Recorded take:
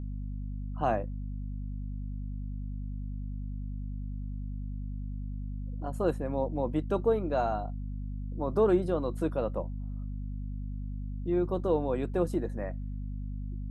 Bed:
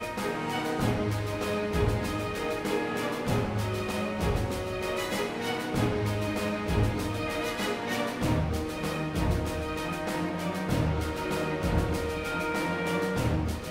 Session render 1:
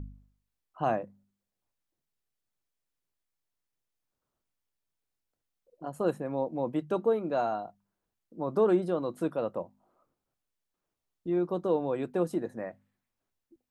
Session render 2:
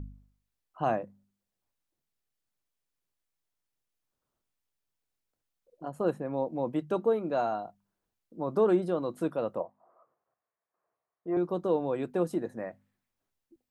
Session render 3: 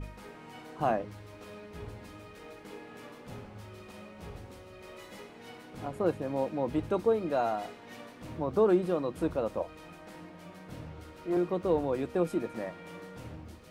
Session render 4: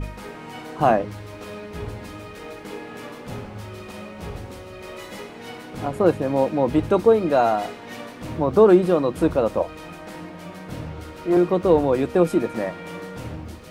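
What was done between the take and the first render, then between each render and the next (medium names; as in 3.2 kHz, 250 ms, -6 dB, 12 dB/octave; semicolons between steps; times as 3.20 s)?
de-hum 50 Hz, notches 5
5.88–6.34 s: treble shelf 3.6 kHz -6.5 dB; 9.60–11.37 s: cabinet simulation 160–2100 Hz, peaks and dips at 190 Hz -6 dB, 270 Hz -9 dB, 480 Hz +5 dB, 680 Hz +10 dB, 1.1 kHz +10 dB, 1.8 kHz +4 dB
add bed -17 dB
trim +11 dB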